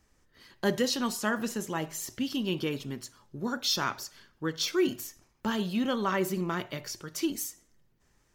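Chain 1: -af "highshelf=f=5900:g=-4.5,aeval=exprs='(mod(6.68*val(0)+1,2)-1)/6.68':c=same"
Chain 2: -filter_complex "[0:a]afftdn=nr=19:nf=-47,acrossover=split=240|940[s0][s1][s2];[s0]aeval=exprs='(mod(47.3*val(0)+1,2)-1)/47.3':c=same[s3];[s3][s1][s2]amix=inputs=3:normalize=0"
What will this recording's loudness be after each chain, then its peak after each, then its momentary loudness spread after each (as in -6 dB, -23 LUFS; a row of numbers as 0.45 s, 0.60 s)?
-31.5 LUFS, -32.0 LUFS; -16.5 dBFS, -15.0 dBFS; 12 LU, 11 LU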